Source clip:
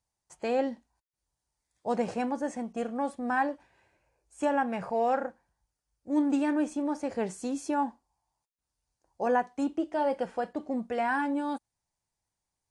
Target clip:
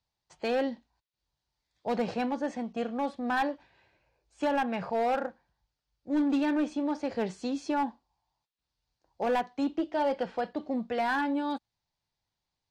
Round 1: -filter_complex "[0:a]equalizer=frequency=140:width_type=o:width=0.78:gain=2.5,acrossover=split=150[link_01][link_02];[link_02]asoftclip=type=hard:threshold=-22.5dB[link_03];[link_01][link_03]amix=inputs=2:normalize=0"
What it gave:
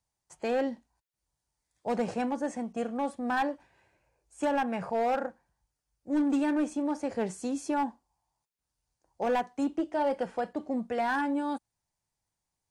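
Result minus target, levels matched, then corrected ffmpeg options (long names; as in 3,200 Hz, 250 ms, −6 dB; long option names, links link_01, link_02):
4,000 Hz band −3.5 dB
-filter_complex "[0:a]lowpass=frequency=4100:width_type=q:width=2.2,equalizer=frequency=140:width_type=o:width=0.78:gain=2.5,acrossover=split=150[link_01][link_02];[link_02]asoftclip=type=hard:threshold=-22.5dB[link_03];[link_01][link_03]amix=inputs=2:normalize=0"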